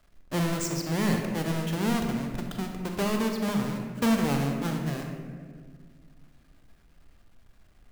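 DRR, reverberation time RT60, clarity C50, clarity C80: 2.5 dB, 1.8 s, 3.5 dB, 5.0 dB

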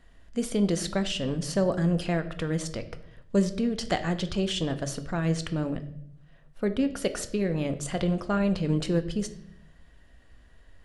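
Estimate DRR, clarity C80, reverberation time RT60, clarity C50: 9.0 dB, 16.5 dB, 0.70 s, 14.0 dB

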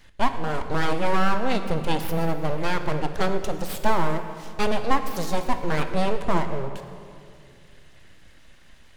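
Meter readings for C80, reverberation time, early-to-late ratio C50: 10.0 dB, 2.4 s, 9.0 dB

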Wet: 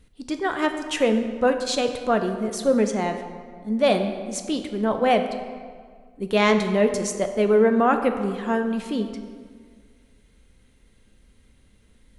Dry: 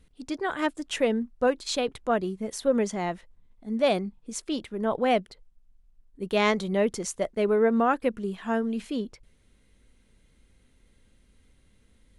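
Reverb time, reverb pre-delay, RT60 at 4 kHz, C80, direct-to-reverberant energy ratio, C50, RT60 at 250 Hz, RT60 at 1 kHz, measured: 1.8 s, 4 ms, 1.2 s, 9.5 dB, 6.0 dB, 8.0 dB, 1.9 s, 1.8 s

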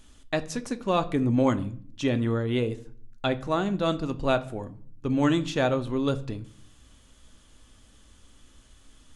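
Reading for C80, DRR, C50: 21.5 dB, 9.5 dB, 17.5 dB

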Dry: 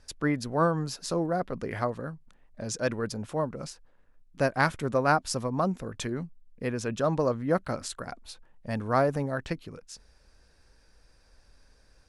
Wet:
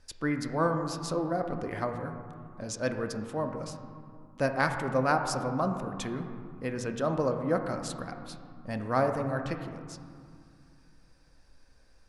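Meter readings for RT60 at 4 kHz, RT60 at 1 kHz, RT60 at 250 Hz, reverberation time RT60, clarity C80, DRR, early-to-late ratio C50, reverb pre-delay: 1.2 s, 2.5 s, 3.1 s, 2.3 s, 8.0 dB, 5.0 dB, 6.5 dB, 3 ms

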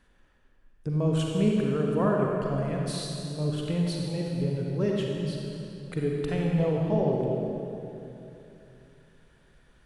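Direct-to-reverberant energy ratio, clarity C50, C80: -1.5 dB, -1.0 dB, 0.5 dB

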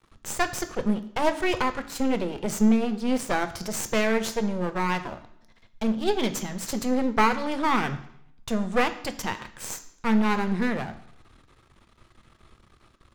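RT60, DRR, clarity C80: 0.70 s, 9.0 dB, 16.0 dB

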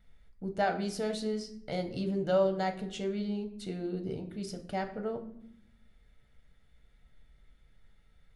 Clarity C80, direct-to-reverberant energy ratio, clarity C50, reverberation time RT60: 15.0 dB, 4.5 dB, 12.0 dB, 0.70 s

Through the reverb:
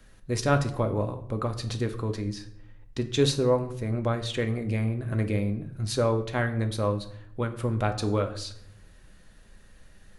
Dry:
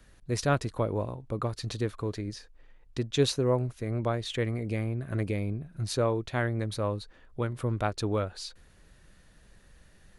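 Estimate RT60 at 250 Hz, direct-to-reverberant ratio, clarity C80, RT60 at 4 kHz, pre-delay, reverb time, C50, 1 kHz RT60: 1.1 s, 6.0 dB, 15.5 dB, 0.45 s, 4 ms, 0.70 s, 12.5 dB, 0.65 s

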